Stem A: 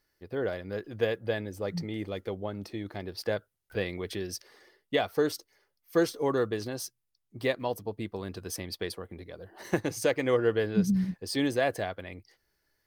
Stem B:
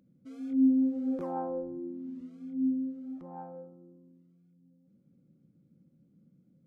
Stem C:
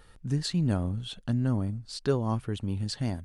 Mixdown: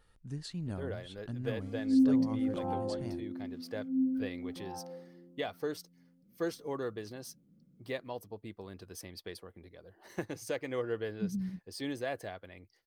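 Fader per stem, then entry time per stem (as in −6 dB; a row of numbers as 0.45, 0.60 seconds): −9.5, −1.0, −12.0 decibels; 0.45, 1.35, 0.00 seconds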